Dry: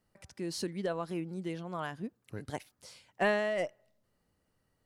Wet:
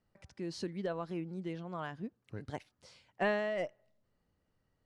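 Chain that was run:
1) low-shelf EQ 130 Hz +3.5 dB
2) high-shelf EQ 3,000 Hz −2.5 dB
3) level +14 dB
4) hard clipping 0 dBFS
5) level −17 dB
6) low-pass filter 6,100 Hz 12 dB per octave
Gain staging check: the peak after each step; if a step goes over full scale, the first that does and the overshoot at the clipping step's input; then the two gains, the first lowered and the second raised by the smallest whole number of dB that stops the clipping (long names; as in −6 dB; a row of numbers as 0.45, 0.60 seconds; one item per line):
−18.0, −19.0, −5.0, −5.0, −22.0, −22.0 dBFS
no step passes full scale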